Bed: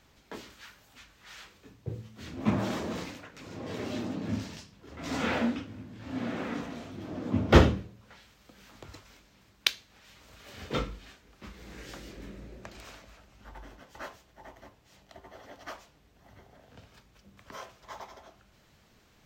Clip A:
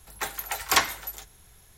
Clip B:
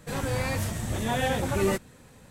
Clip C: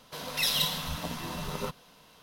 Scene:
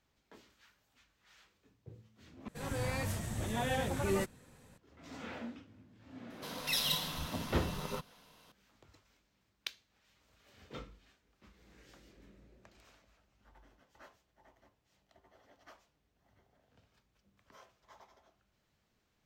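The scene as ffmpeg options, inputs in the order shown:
-filter_complex "[0:a]volume=-15.5dB[a];[2:a]dynaudnorm=f=120:g=3:m=4.5dB[b];[a]asplit=2[c][d];[c]atrim=end=2.484[e];[b]atrim=end=2.3,asetpts=PTS-STARTPTS,volume=-12dB[f];[d]atrim=start=4.776[g];[3:a]atrim=end=2.22,asetpts=PTS-STARTPTS,volume=-5.5dB,afade=t=in:d=0.004:c=hsin,afade=t=out:st=2.216:d=0.004:c=hsin,adelay=6300[h];[e][f]acrossfade=d=0.004:c1=hsin:c2=hsin[i];[i][g]acrossfade=d=0.004:c1=hsin:c2=hsin[j];[j][h]amix=inputs=2:normalize=0"

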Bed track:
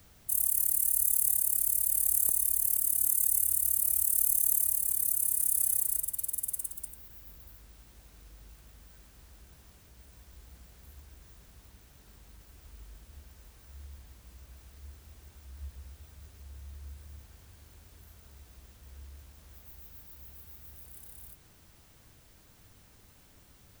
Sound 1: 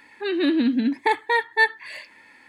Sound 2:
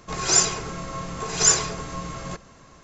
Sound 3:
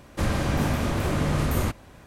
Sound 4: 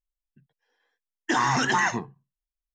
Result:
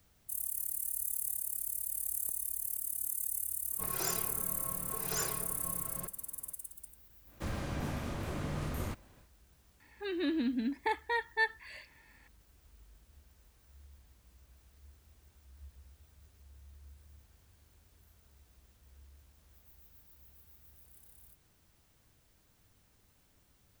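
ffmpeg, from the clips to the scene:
-filter_complex "[0:a]volume=-9.5dB[a];[2:a]lowpass=f=2.5k:p=1,atrim=end=2.83,asetpts=PTS-STARTPTS,volume=-12.5dB,afade=t=in:d=0.004:c=hsin,afade=t=out:st=2.826:d=0.004:c=hsin,adelay=3710[b];[3:a]atrim=end=2.06,asetpts=PTS-STARTPTS,volume=-13dB,afade=t=in:d=0.1,afade=t=out:st=1.96:d=0.1,adelay=7230[c];[1:a]atrim=end=2.48,asetpts=PTS-STARTPTS,volume=-12dB,afade=t=in:d=0.004:c=hsin,afade=t=out:st=2.476:d=0.004:c=hsin,adelay=9800[d];[a][b][c][d]amix=inputs=4:normalize=0"

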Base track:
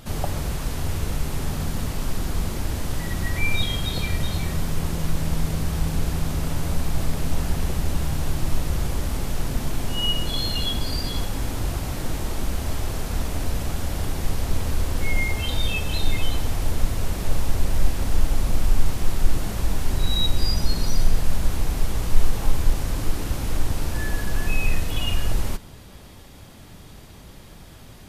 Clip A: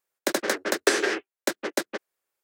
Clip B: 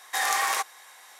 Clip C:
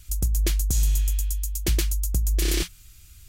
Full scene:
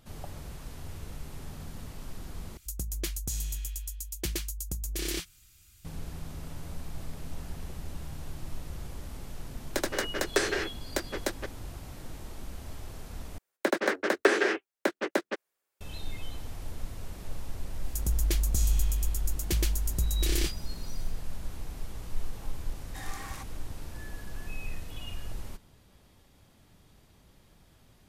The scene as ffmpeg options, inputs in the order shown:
-filter_complex "[3:a]asplit=2[a][b];[1:a]asplit=2[c][d];[0:a]volume=-15.5dB[e];[a]lowshelf=f=85:g=-9.5[f];[d]acrossover=split=3000[g][h];[h]acompressor=threshold=-38dB:ratio=4:attack=1:release=60[i];[g][i]amix=inputs=2:normalize=0[j];[e]asplit=3[k][l][m];[k]atrim=end=2.574[n];[f]atrim=end=3.28,asetpts=PTS-STARTPTS,volume=-6.5dB[o];[l]atrim=start=5.846:end=13.384[p];[j]atrim=end=2.43,asetpts=PTS-STARTPTS,volume=-0.5dB[q];[m]atrim=start=15.806[r];[c]atrim=end=2.43,asetpts=PTS-STARTPTS,volume=-5.5dB,afade=t=in:d=0.004:c=hsin,afade=t=out:st=2.426:d=0.004:c=hsin,adelay=9490[s];[b]atrim=end=3.28,asetpts=PTS-STARTPTS,volume=-5dB,afade=t=in:d=0.004:c=hsin,afade=t=out:st=3.276:d=0.004:c=hsin,adelay=17840[t];[2:a]atrim=end=1.19,asetpts=PTS-STARTPTS,volume=-18dB,afade=t=in:d=0.004:c=hsin,afade=t=out:st=1.186:d=0.004:c=hsin,adelay=22810[u];[n][o]acrossfade=d=0.004:c1=hsin:c2=hsin[v];[v][p]acrossfade=d=0.004:c1=hsin:c2=hsin[w];[w][q]acrossfade=d=0.004:c1=hsin:c2=hsin[x];[x][r]acrossfade=d=0.004:c1=hsin:c2=hsin[y];[y][s][t][u]amix=inputs=4:normalize=0"

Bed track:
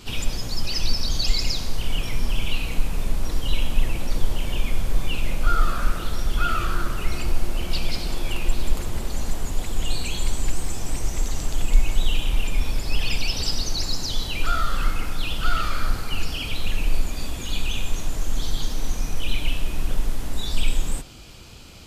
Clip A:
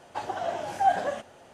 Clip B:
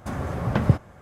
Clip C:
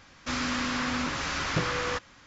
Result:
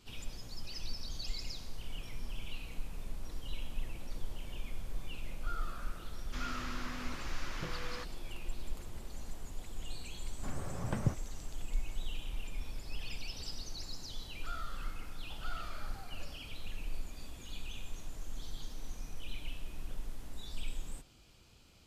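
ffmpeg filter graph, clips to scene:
-filter_complex "[0:a]volume=-18dB[a];[1:a]acompressor=threshold=-37dB:ratio=6:attack=3.2:release=140:knee=1:detection=peak[b];[3:a]atrim=end=2.26,asetpts=PTS-STARTPTS,volume=-14.5dB,afade=t=in:d=0.004:c=hsin,afade=t=out:st=2.256:d=0.004:c=hsin,adelay=6060[c];[2:a]atrim=end=1.01,asetpts=PTS-STARTPTS,volume=-13.5dB,afade=t=in:d=0.004:c=hsin,afade=t=out:st=1.006:d=0.004:c=hsin,adelay=10370[d];[b]atrim=end=1.53,asetpts=PTS-STARTPTS,volume=-17.5dB,afade=t=in:d=0.004:c=hsin,afade=t=out:st=1.526:d=0.004:c=hsin,adelay=15150[e];[a][c][d][e]amix=inputs=4:normalize=0"

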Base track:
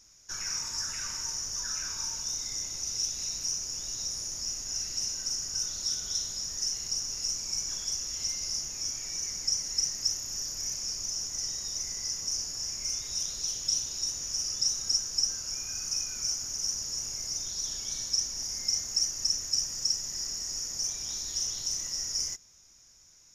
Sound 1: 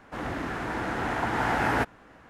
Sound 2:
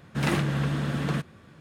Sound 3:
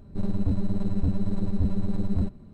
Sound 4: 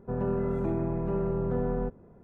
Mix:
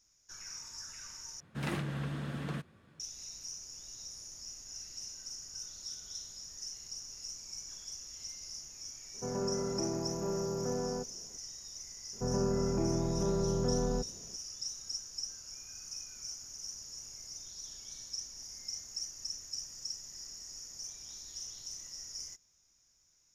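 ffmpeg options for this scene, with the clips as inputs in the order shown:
-filter_complex "[4:a]asplit=2[a][b];[0:a]volume=-12dB[c];[a]highpass=f=240:p=1[d];[c]asplit=2[e][f];[e]atrim=end=1.404[g];[2:a]atrim=end=1.6,asetpts=PTS-STARTPTS,volume=-10.5dB[h];[f]atrim=start=2.996[i];[d]atrim=end=2.23,asetpts=PTS-STARTPTS,volume=-3.5dB,afade=t=in:d=0.004:c=hsin,afade=t=out:st=2.226:d=0.004:c=hsin,adelay=403074S[j];[b]atrim=end=2.23,asetpts=PTS-STARTPTS,volume=-2.5dB,afade=t=in:d=0.004:c=hsin,afade=t=out:st=2.226:d=0.004:c=hsin,adelay=12130[k];[g][h]acrossfade=d=0.004:c1=hsin:c2=hsin[l];[l][i]acrossfade=d=0.004:c1=hsin:c2=hsin[m];[m][j][k]amix=inputs=3:normalize=0"

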